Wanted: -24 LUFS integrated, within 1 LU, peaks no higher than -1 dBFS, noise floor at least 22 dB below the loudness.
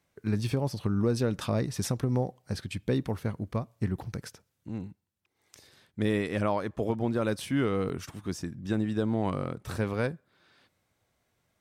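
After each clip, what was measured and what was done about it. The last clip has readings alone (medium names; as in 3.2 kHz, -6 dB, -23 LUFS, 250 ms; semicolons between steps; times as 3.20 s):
dropouts 1; longest dropout 6.6 ms; loudness -31.0 LUFS; peak level -16.5 dBFS; loudness target -24.0 LUFS
-> interpolate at 7.89 s, 6.6 ms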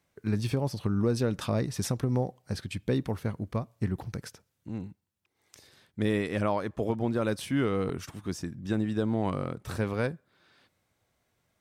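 dropouts 0; loudness -31.0 LUFS; peak level -16.5 dBFS; loudness target -24.0 LUFS
-> trim +7 dB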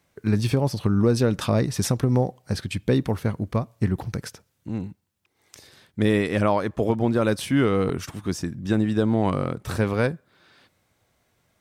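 loudness -24.0 LUFS; peak level -9.5 dBFS; noise floor -70 dBFS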